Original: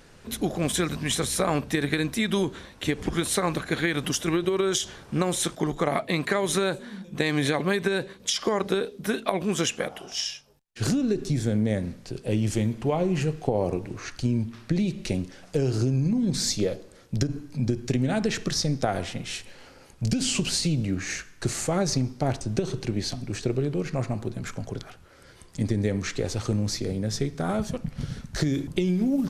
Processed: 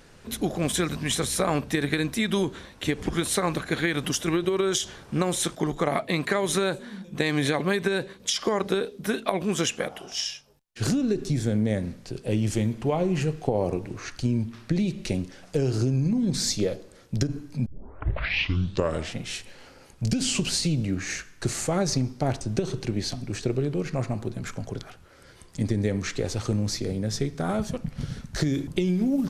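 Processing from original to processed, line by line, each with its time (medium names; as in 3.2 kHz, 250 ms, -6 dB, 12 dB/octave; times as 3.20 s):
17.66 s: tape start 1.51 s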